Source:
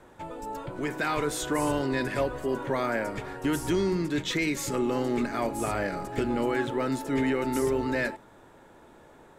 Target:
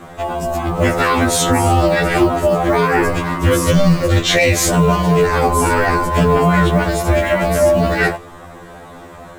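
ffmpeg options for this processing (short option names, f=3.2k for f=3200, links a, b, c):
-af "acrusher=bits=8:mode=log:mix=0:aa=0.000001,aeval=exprs='val(0)*sin(2*PI*200*n/s)':c=same,alimiter=level_in=22.5dB:limit=-1dB:release=50:level=0:latency=1,afftfilt=real='re*2*eq(mod(b,4),0)':imag='im*2*eq(mod(b,4),0)':win_size=2048:overlap=0.75"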